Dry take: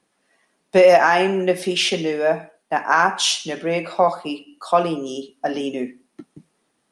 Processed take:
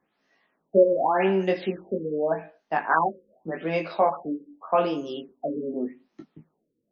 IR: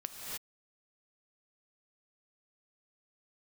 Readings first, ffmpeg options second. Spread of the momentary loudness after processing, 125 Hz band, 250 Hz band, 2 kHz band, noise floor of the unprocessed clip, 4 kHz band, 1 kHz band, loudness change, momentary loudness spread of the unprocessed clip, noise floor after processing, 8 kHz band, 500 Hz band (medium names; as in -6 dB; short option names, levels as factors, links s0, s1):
13 LU, -4.0 dB, -4.0 dB, -10.5 dB, -70 dBFS, -20.0 dB, -6.0 dB, -6.5 dB, 15 LU, -77 dBFS, under -35 dB, -5.5 dB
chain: -af "flanger=delay=18.5:depth=2.4:speed=0.31,afftfilt=real='re*lt(b*sr/1024,540*pow(6800/540,0.5+0.5*sin(2*PI*0.85*pts/sr)))':imag='im*lt(b*sr/1024,540*pow(6800/540,0.5+0.5*sin(2*PI*0.85*pts/sr)))':win_size=1024:overlap=0.75,volume=0.891"